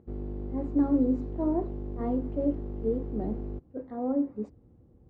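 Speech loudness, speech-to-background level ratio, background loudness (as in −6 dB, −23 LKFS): −31.0 LKFS, 7.0 dB, −38.0 LKFS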